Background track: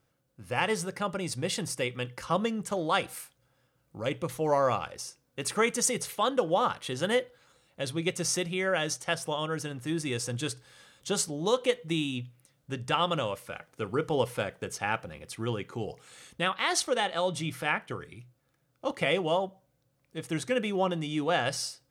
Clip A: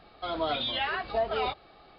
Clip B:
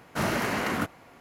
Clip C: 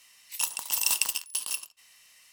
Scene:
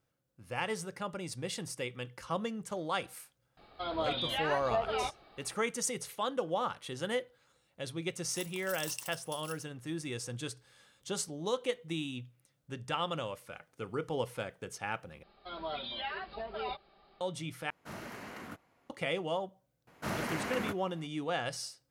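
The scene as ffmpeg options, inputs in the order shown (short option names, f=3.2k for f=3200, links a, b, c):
-filter_complex "[1:a]asplit=2[a][b];[2:a]asplit=2[c][d];[0:a]volume=-7dB[e];[3:a]acrusher=bits=7:mix=0:aa=0.000001[f];[b]aecho=1:1:5.1:0.54[g];[e]asplit=3[h][i][j];[h]atrim=end=15.234[k];[g]atrim=end=1.98,asetpts=PTS-STARTPTS,volume=-10dB[l];[i]atrim=start=17.206:end=17.704[m];[c]atrim=end=1.2,asetpts=PTS-STARTPTS,volume=-17.5dB[n];[j]atrim=start=18.896[o];[a]atrim=end=1.98,asetpts=PTS-STARTPTS,volume=-4dB,afade=t=in:d=0.004:c=hsin,afade=t=out:st=1.976:d=0.004:c=hsin,adelay=157437S[p];[f]atrim=end=2.32,asetpts=PTS-STARTPTS,volume=-16.5dB,afade=t=in:d=0.004:c=hsin,afade=t=out:st=2.316:d=0.004:c=hsin,adelay=7970[q];[d]atrim=end=1.2,asetpts=PTS-STARTPTS,volume=-8.5dB,afade=t=in:d=0.004:c=hsin,afade=t=out:st=1.196:d=0.004:c=hsin,adelay=19870[r];[k][l]acrossfade=d=0.004:c1=hsin:c2=hsin[s];[s][m]acrossfade=d=0.004:c1=hsin:c2=hsin[t];[t][n]acrossfade=d=0.004:c1=hsin:c2=hsin[u];[u][o]acrossfade=d=0.004:c1=hsin:c2=hsin[v];[v][p][q][r]amix=inputs=4:normalize=0"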